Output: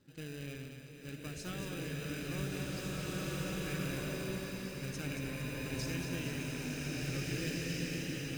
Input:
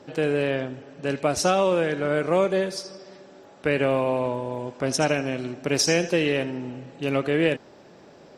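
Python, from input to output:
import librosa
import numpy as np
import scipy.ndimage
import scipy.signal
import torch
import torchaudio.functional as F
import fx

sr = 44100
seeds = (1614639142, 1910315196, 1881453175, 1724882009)

p1 = fx.rattle_buzz(x, sr, strikes_db=-31.0, level_db=-27.0)
p2 = fx.high_shelf(p1, sr, hz=7300.0, db=-9.0)
p3 = fx.notch(p2, sr, hz=5600.0, q=8.0)
p4 = fx.sample_hold(p3, sr, seeds[0], rate_hz=1100.0, jitter_pct=0)
p5 = p3 + (p4 * 10.0 ** (-6.5 / 20.0))
p6 = fx.tone_stack(p5, sr, knobs='6-0-2')
p7 = p6 + fx.echo_split(p6, sr, split_hz=390.0, low_ms=125, high_ms=229, feedback_pct=52, wet_db=-7, dry=0)
p8 = fx.rev_bloom(p7, sr, seeds[1], attack_ms=1910, drr_db=-5.5)
y = p8 * 10.0 ** (-1.5 / 20.0)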